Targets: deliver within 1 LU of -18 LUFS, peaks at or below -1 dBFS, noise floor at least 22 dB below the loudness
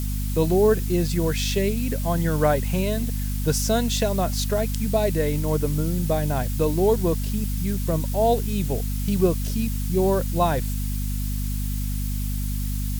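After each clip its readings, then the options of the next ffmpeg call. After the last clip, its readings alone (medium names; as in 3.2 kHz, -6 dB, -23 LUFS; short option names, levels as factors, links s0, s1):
hum 50 Hz; highest harmonic 250 Hz; hum level -24 dBFS; noise floor -26 dBFS; noise floor target -46 dBFS; loudness -24.0 LUFS; peak level -7.5 dBFS; loudness target -18.0 LUFS
-> -af "bandreject=f=50:t=h:w=4,bandreject=f=100:t=h:w=4,bandreject=f=150:t=h:w=4,bandreject=f=200:t=h:w=4,bandreject=f=250:t=h:w=4"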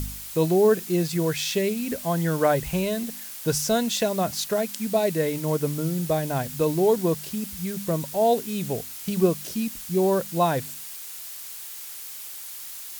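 hum not found; noise floor -38 dBFS; noise floor target -48 dBFS
-> -af "afftdn=nr=10:nf=-38"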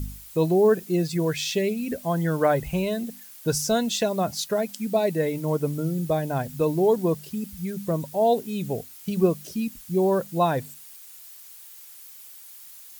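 noise floor -46 dBFS; noise floor target -47 dBFS
-> -af "afftdn=nr=6:nf=-46"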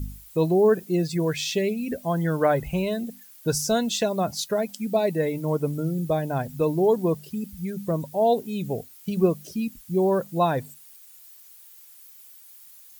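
noise floor -49 dBFS; loudness -25.0 LUFS; peak level -8.5 dBFS; loudness target -18.0 LUFS
-> -af "volume=2.24"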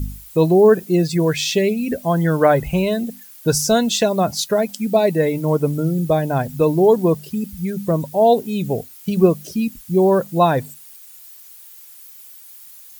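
loudness -18.0 LUFS; peak level -1.5 dBFS; noise floor -42 dBFS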